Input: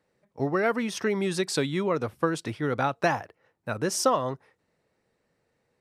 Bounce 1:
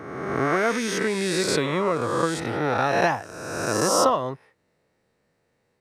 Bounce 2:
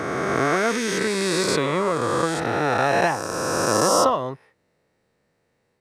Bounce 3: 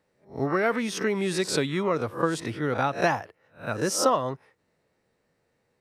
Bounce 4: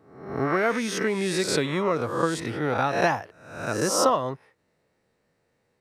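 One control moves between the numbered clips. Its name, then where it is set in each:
peak hold with a rise ahead of every peak, rising 60 dB in: 1.49, 3.13, 0.3, 0.71 seconds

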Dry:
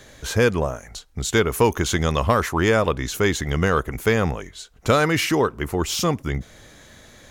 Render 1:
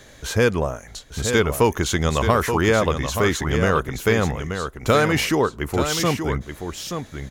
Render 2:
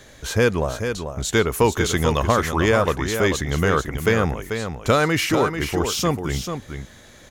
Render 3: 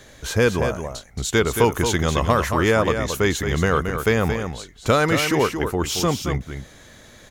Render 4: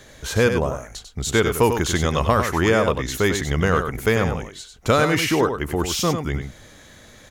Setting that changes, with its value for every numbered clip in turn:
single-tap delay, delay time: 878, 440, 224, 96 milliseconds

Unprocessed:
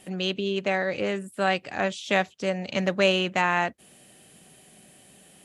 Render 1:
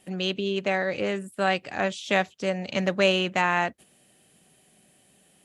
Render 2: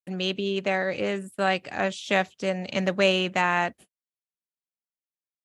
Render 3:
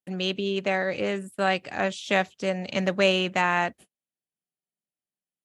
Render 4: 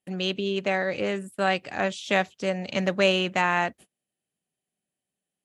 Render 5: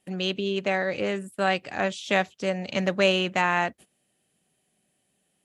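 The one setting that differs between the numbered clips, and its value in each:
noise gate, range: −7, −60, −46, −34, −19 decibels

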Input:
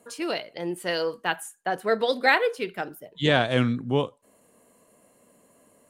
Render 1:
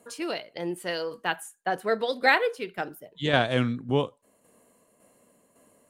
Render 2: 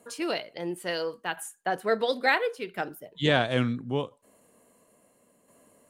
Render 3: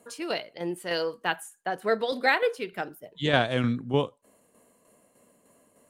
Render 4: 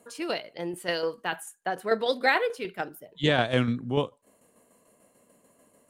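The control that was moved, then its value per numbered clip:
shaped tremolo, speed: 1.8, 0.73, 3.3, 6.8 Hertz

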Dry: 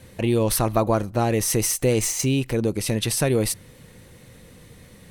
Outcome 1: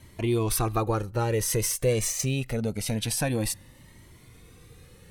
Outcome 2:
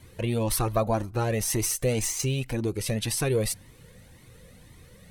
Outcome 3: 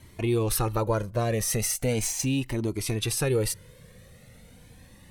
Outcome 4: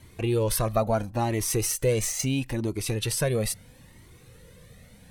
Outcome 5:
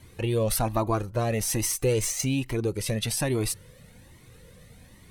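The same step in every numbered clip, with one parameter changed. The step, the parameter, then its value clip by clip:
flanger whose copies keep moving one way, speed: 0.25, 1.9, 0.38, 0.75, 1.2 Hertz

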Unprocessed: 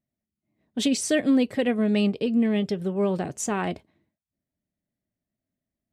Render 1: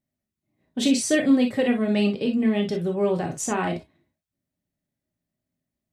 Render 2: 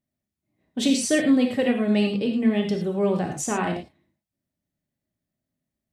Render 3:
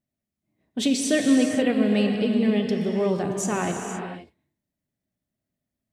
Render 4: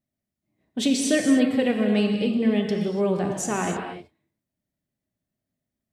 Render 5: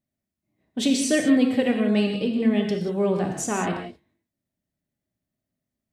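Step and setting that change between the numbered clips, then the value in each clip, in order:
reverb whose tail is shaped and stops, gate: 80, 130, 540, 320, 210 milliseconds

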